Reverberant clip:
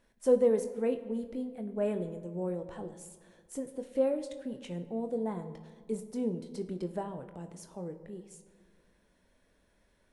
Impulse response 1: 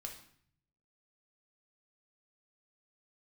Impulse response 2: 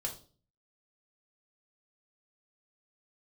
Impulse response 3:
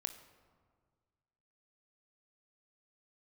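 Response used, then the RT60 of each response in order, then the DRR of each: 3; 0.60, 0.40, 1.8 s; 1.5, 0.0, 7.5 dB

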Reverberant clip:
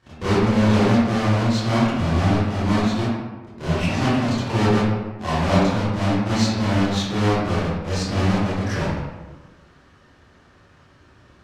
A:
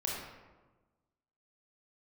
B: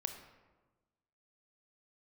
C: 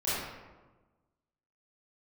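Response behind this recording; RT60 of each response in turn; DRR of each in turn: C; 1.3, 1.3, 1.3 s; -3.5, 6.0, -12.5 dB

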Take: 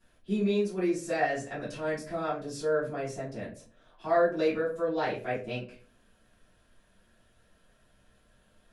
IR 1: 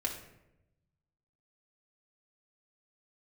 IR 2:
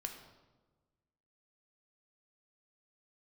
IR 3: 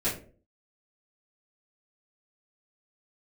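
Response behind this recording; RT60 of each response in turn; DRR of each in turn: 3; 0.90, 1.3, 0.45 s; -1.5, 3.5, -12.5 dB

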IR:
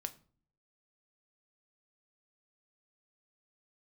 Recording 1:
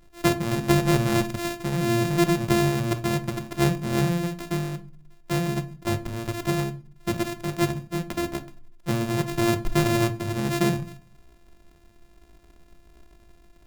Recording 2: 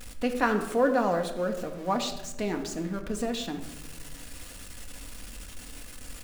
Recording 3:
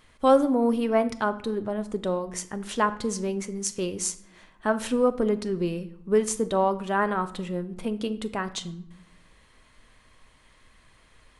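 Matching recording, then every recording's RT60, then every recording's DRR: 1; 0.45 s, 1.1 s, not exponential; 8.5, 4.0, 9.5 dB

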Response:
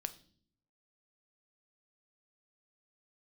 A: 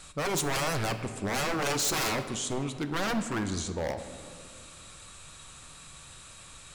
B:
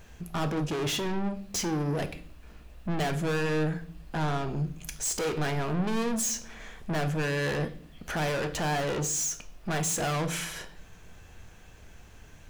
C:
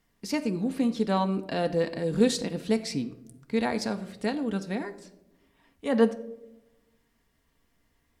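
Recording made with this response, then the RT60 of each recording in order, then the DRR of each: B; 2.2 s, not exponential, 0.95 s; 8.0, 10.0, 6.5 dB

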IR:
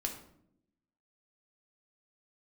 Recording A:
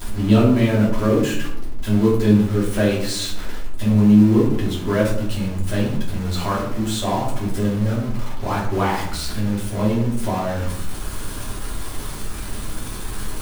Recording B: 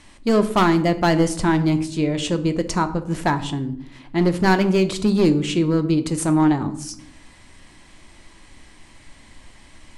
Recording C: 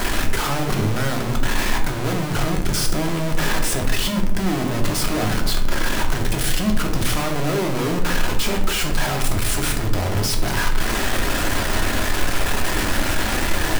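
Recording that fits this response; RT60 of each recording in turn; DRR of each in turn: C; 0.70 s, not exponential, 0.70 s; -7.0, 9.0, 1.5 dB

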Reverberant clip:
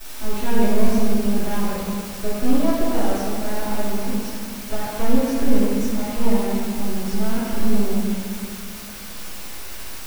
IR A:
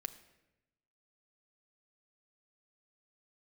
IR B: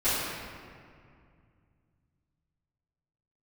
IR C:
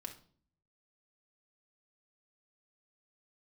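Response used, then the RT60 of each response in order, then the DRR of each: B; 0.95, 2.2, 0.50 s; 9.0, -17.5, 2.5 dB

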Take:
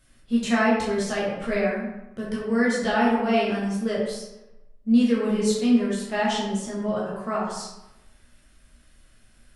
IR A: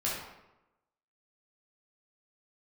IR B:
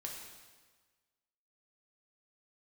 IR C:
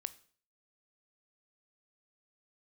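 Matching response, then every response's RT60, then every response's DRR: A; 0.95, 1.4, 0.50 s; -7.0, -1.5, 14.0 dB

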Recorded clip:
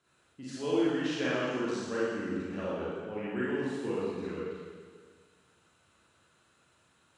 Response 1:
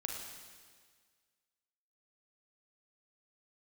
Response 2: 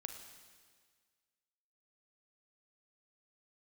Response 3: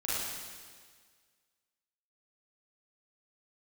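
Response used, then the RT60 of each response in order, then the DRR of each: 3; 1.7, 1.7, 1.7 s; 0.5, 5.5, -9.5 dB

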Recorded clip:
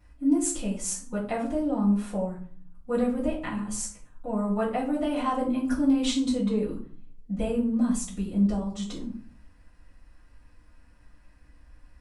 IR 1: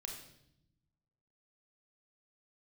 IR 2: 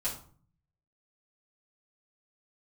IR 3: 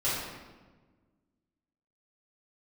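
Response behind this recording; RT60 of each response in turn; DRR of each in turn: 2; 0.75, 0.45, 1.3 s; 1.5, -9.5, -11.5 dB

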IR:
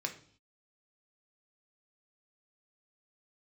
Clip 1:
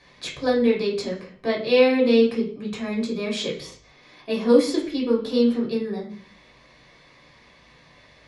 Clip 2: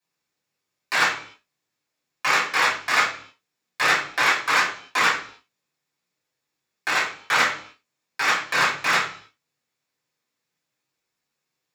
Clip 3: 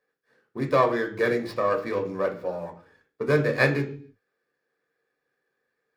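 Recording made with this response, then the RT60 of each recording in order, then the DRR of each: 3; 0.50, 0.50, 0.50 s; -4.5, -10.0, 3.5 dB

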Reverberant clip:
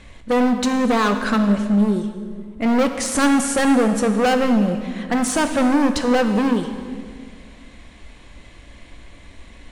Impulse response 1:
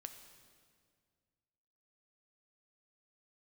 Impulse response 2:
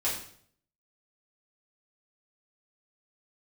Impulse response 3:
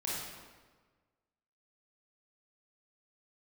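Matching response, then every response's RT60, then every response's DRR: 1; 2.0, 0.60, 1.4 s; 6.5, -8.5, -6.5 dB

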